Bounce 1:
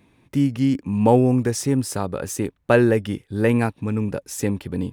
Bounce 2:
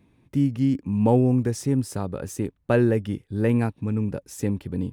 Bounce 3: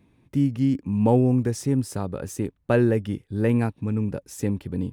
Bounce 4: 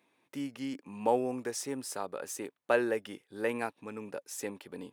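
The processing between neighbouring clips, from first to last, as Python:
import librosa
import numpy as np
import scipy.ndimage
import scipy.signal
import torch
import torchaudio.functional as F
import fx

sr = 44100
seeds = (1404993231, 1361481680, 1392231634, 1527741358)

y1 = fx.low_shelf(x, sr, hz=400.0, db=8.0)
y1 = y1 * librosa.db_to_amplitude(-8.0)
y2 = y1
y3 = scipy.signal.sosfilt(scipy.signal.butter(2, 580.0, 'highpass', fs=sr, output='sos'), y2)
y3 = y3 * librosa.db_to_amplitude(-1.5)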